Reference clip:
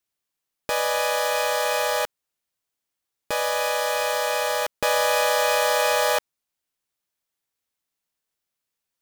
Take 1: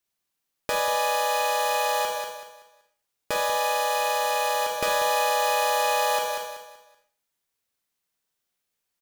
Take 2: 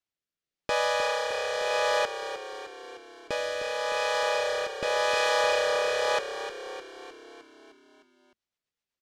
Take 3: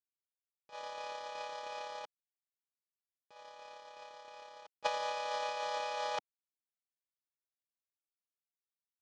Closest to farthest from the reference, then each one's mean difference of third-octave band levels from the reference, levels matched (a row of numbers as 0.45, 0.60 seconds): 1, 2, 3; 2.5, 6.0, 9.5 decibels